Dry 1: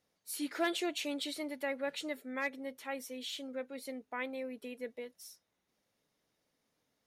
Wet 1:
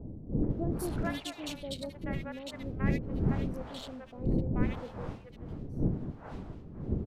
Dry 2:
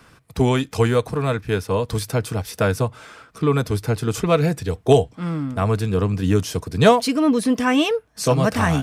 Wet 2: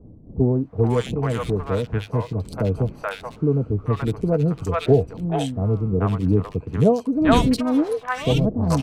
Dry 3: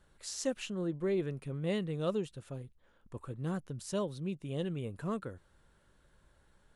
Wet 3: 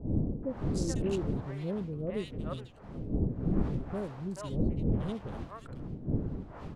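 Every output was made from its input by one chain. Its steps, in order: Wiener smoothing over 25 samples; wind noise 230 Hz -34 dBFS; three bands offset in time lows, mids, highs 0.43/0.5 s, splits 640/2200 Hz

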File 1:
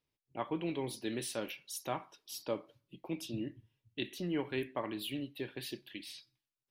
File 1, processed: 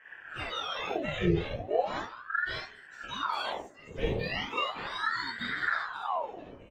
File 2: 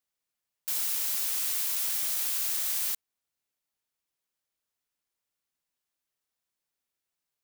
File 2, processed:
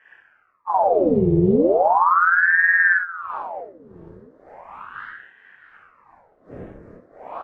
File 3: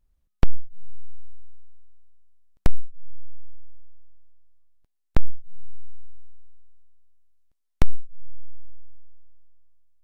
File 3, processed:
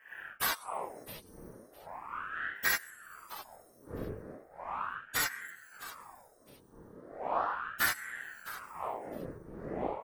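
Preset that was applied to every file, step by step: spectrum mirrored in octaves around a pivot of 880 Hz; wind noise 300 Hz -49 dBFS; bell 1400 Hz +5 dB 0.67 oct; in parallel at -4.5 dB: soft clip -29.5 dBFS; on the sum: envelope phaser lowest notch 340 Hz, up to 1300 Hz, full sweep at -31 dBFS; on a send: feedback echo 0.66 s, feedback 20%, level -15.5 dB; on the sum: non-linear reverb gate 0.11 s flat, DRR -5.5 dB; ring modulator with a swept carrier 1000 Hz, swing 75%, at 0.37 Hz

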